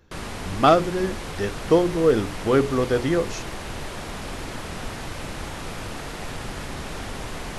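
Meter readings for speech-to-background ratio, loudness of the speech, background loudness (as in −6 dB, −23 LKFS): 11.5 dB, −22.0 LKFS, −33.5 LKFS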